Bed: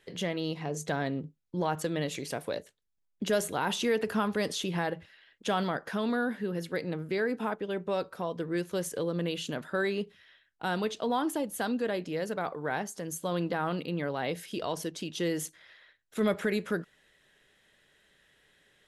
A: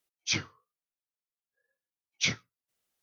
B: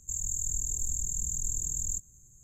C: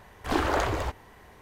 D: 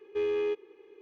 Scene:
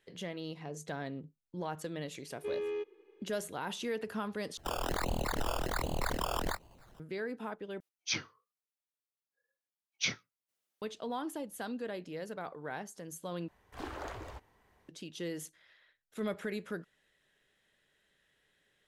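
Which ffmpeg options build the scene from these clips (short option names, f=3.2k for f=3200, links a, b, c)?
-filter_complex "[0:a]volume=-8.5dB[a];[2:a]acrusher=samples=17:mix=1:aa=0.000001:lfo=1:lforange=10.2:lforate=1.3[b];[1:a]highpass=f=190:p=1[c];[a]asplit=4[d][e][f][g];[d]atrim=end=4.574[h];[b]atrim=end=2.43,asetpts=PTS-STARTPTS,volume=-2dB[i];[e]atrim=start=6.996:end=7.804[j];[c]atrim=end=3.02,asetpts=PTS-STARTPTS,volume=-4.5dB[k];[f]atrim=start=10.816:end=13.484[l];[3:a]atrim=end=1.41,asetpts=PTS-STARTPTS,volume=-16.5dB[m];[g]atrim=start=14.886[n];[4:a]atrim=end=1.01,asetpts=PTS-STARTPTS,volume=-7dB,afade=t=in:d=0.004:c=hsin,afade=t=out:st=1.006:d=0.004:c=hsin,adelay=2290[o];[h][i]acrossfade=d=0.004:c1=hsin:c2=hsin[p];[p][j]acrossfade=d=0.004:c1=hsin:c2=hsin[q];[q][k]acrossfade=d=0.004:c1=hsin:c2=hsin[r];[r][l]acrossfade=d=0.004:c1=hsin:c2=hsin[s];[s][m]acrossfade=d=0.004:c1=hsin:c2=hsin[t];[t][n]acrossfade=d=0.004:c1=hsin:c2=hsin[u];[u][o]amix=inputs=2:normalize=0"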